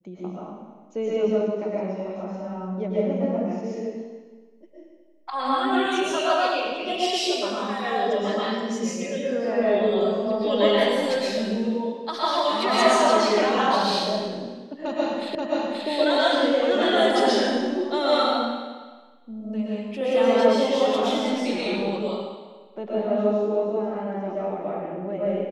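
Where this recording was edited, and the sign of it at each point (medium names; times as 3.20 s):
15.35 s: repeat of the last 0.53 s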